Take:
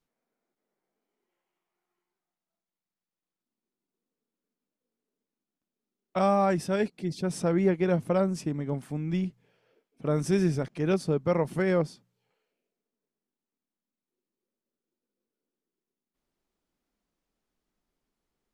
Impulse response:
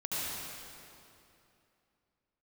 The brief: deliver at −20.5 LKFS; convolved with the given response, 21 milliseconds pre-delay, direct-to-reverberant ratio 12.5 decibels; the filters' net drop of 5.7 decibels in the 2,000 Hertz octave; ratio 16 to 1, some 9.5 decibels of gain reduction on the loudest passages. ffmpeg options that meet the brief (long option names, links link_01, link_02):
-filter_complex "[0:a]equalizer=frequency=2000:width_type=o:gain=-7.5,acompressor=threshold=-29dB:ratio=16,asplit=2[link_01][link_02];[1:a]atrim=start_sample=2205,adelay=21[link_03];[link_02][link_03]afir=irnorm=-1:irlink=0,volume=-18.5dB[link_04];[link_01][link_04]amix=inputs=2:normalize=0,volume=14.5dB"